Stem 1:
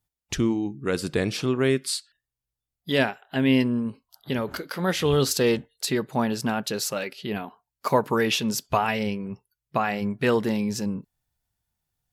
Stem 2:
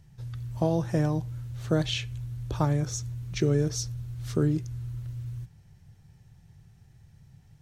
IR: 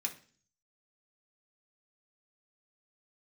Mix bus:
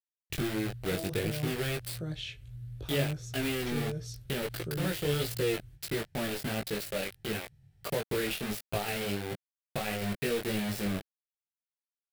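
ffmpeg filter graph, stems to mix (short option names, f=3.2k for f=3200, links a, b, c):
-filter_complex "[0:a]acrossover=split=700|2200[a][b][c];[a]acompressor=threshold=-25dB:ratio=4[d];[b]acompressor=threshold=-41dB:ratio=4[e];[c]acompressor=threshold=-35dB:ratio=4[f];[d][e][f]amix=inputs=3:normalize=0,acrusher=bits=4:mix=0:aa=0.000001,volume=1dB[g];[1:a]alimiter=limit=-18dB:level=0:latency=1:release=59,adelay=300,volume=-4dB[h];[g][h]amix=inputs=2:normalize=0,equalizer=f=250:t=o:w=0.67:g=-7,equalizer=f=1k:t=o:w=0.67:g=-10,equalizer=f=6.3k:t=o:w=0.67:g=-8,flanger=delay=18:depth=3.3:speed=1.5"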